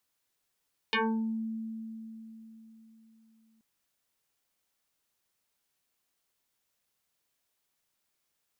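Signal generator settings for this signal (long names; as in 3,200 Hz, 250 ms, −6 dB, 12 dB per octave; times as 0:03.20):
two-operator FM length 2.68 s, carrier 223 Hz, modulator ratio 3, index 5.8, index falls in 0.49 s exponential, decay 3.94 s, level −24 dB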